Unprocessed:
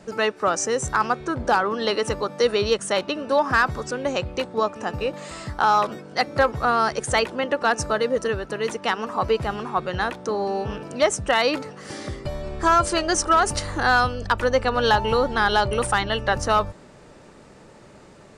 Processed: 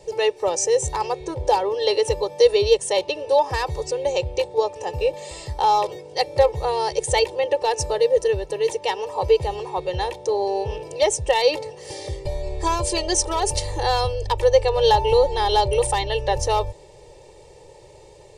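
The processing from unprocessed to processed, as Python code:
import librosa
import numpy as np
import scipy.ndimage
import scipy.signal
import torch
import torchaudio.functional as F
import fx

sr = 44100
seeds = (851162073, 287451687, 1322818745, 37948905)

y = fx.fixed_phaser(x, sr, hz=580.0, stages=4)
y = y + 0.65 * np.pad(y, (int(2.2 * sr / 1000.0), 0))[:len(y)]
y = y * 10.0 ** (2.0 / 20.0)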